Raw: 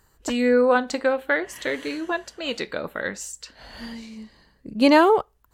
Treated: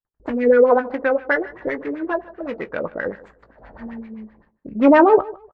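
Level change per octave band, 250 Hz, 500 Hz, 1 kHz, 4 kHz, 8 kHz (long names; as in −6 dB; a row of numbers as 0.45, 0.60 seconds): +3.0 dB, +4.5 dB, +3.0 dB, below −10 dB, below −25 dB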